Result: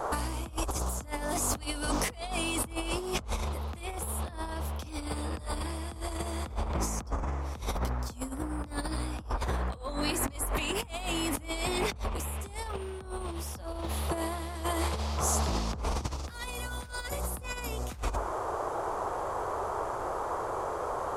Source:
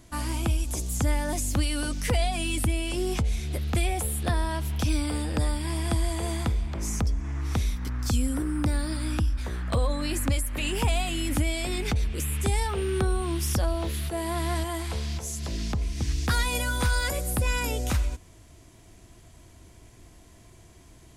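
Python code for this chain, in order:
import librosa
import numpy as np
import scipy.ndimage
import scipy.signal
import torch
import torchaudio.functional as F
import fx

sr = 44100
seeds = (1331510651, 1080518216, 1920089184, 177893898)

y = fx.hum_notches(x, sr, base_hz=50, count=7)
y = fx.dmg_noise_band(y, sr, seeds[0], low_hz=360.0, high_hz=1200.0, level_db=-39.0)
y = fx.over_compress(y, sr, threshold_db=-32.0, ratio=-0.5)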